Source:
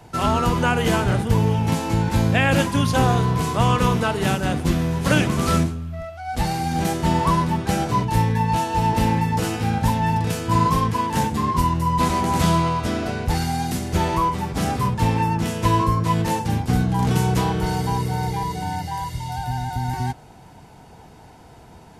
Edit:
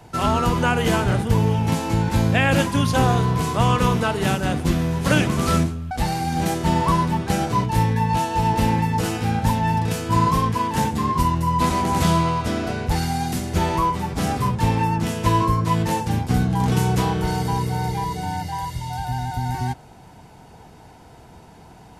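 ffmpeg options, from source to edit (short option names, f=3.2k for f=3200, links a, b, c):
-filter_complex "[0:a]asplit=2[a][b];[a]atrim=end=5.912[c];[b]atrim=start=6.298[d];[c][d]acrossfade=d=0.004:c1=hsin:c2=hsin"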